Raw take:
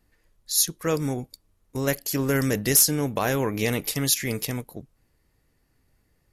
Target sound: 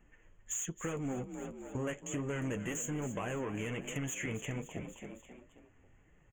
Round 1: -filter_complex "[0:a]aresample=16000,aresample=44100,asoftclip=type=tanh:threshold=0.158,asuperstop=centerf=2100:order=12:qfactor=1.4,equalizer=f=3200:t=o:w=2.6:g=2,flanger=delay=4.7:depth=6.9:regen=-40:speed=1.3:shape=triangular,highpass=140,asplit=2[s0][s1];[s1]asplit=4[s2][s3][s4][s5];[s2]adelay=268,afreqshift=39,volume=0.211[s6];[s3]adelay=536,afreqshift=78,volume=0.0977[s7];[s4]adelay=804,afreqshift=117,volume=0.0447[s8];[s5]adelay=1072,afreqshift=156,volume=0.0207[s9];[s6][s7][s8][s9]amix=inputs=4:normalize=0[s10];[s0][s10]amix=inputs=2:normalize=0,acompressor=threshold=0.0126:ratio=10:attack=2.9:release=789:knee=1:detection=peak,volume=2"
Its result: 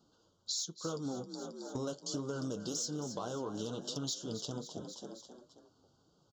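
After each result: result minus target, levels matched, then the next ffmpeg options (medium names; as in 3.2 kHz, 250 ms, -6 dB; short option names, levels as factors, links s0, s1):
2 kHz band -13.0 dB; saturation: distortion -9 dB; 125 Hz band -3.5 dB
-filter_complex "[0:a]aresample=16000,aresample=44100,asoftclip=type=tanh:threshold=0.158,asuperstop=centerf=4600:order=12:qfactor=1.4,equalizer=f=3200:t=o:w=2.6:g=2,flanger=delay=4.7:depth=6.9:regen=-40:speed=1.3:shape=triangular,highpass=140,asplit=2[s0][s1];[s1]asplit=4[s2][s3][s4][s5];[s2]adelay=268,afreqshift=39,volume=0.211[s6];[s3]adelay=536,afreqshift=78,volume=0.0977[s7];[s4]adelay=804,afreqshift=117,volume=0.0447[s8];[s5]adelay=1072,afreqshift=156,volume=0.0207[s9];[s6][s7][s8][s9]amix=inputs=4:normalize=0[s10];[s0][s10]amix=inputs=2:normalize=0,acompressor=threshold=0.0126:ratio=10:attack=2.9:release=789:knee=1:detection=peak,volume=2"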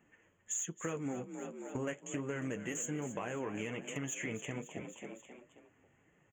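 saturation: distortion -9 dB; 125 Hz band -3.0 dB
-filter_complex "[0:a]aresample=16000,aresample=44100,asoftclip=type=tanh:threshold=0.0668,asuperstop=centerf=4600:order=12:qfactor=1.4,equalizer=f=3200:t=o:w=2.6:g=2,flanger=delay=4.7:depth=6.9:regen=-40:speed=1.3:shape=triangular,highpass=140,asplit=2[s0][s1];[s1]asplit=4[s2][s3][s4][s5];[s2]adelay=268,afreqshift=39,volume=0.211[s6];[s3]adelay=536,afreqshift=78,volume=0.0977[s7];[s4]adelay=804,afreqshift=117,volume=0.0447[s8];[s5]adelay=1072,afreqshift=156,volume=0.0207[s9];[s6][s7][s8][s9]amix=inputs=4:normalize=0[s10];[s0][s10]amix=inputs=2:normalize=0,acompressor=threshold=0.0126:ratio=10:attack=2.9:release=789:knee=1:detection=peak,volume=2"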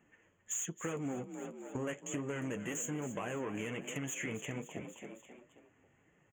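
125 Hz band -3.0 dB
-filter_complex "[0:a]aresample=16000,aresample=44100,asoftclip=type=tanh:threshold=0.0668,asuperstop=centerf=4600:order=12:qfactor=1.4,equalizer=f=3200:t=o:w=2.6:g=2,flanger=delay=4.7:depth=6.9:regen=-40:speed=1.3:shape=triangular,asplit=2[s0][s1];[s1]asplit=4[s2][s3][s4][s5];[s2]adelay=268,afreqshift=39,volume=0.211[s6];[s3]adelay=536,afreqshift=78,volume=0.0977[s7];[s4]adelay=804,afreqshift=117,volume=0.0447[s8];[s5]adelay=1072,afreqshift=156,volume=0.0207[s9];[s6][s7][s8][s9]amix=inputs=4:normalize=0[s10];[s0][s10]amix=inputs=2:normalize=0,acompressor=threshold=0.0126:ratio=10:attack=2.9:release=789:knee=1:detection=peak,volume=2"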